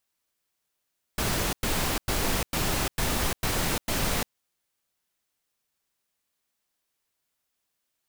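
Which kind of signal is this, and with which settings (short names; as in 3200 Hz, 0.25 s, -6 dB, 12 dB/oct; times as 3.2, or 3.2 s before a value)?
noise bursts pink, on 0.35 s, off 0.10 s, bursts 7, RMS -26.5 dBFS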